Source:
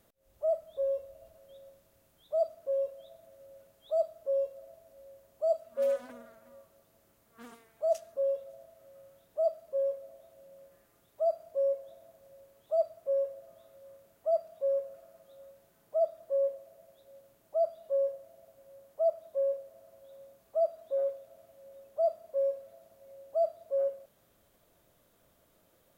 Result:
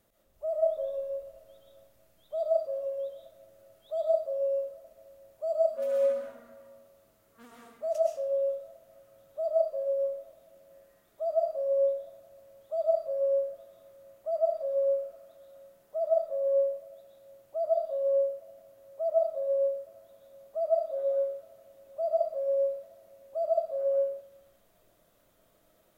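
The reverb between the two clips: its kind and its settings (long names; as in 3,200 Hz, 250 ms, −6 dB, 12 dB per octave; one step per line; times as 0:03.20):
comb and all-pass reverb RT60 0.75 s, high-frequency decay 0.75×, pre-delay 85 ms, DRR −2.5 dB
level −3.5 dB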